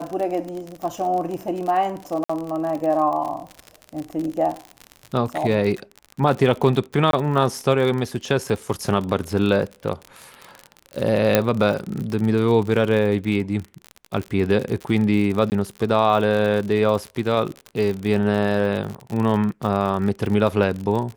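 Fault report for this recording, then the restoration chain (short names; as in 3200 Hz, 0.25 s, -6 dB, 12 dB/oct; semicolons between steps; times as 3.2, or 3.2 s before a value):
crackle 56/s -26 dBFS
2.24–2.29 gap 55 ms
7.11–7.13 gap 22 ms
11.35 pop -1 dBFS
15.5–15.52 gap 19 ms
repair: de-click; interpolate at 2.24, 55 ms; interpolate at 7.11, 22 ms; interpolate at 15.5, 19 ms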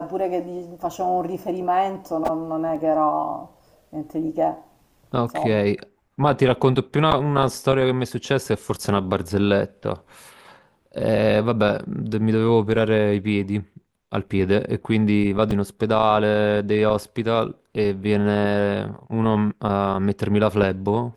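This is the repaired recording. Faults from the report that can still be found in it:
none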